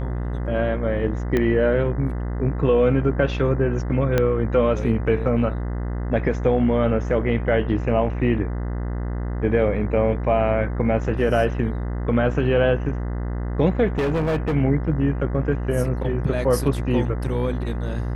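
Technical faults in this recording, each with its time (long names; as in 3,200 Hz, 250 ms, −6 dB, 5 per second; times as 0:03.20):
mains buzz 60 Hz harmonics 34 −26 dBFS
0:01.37: click −10 dBFS
0:04.18: click −7 dBFS
0:13.98–0:14.55: clipping −18.5 dBFS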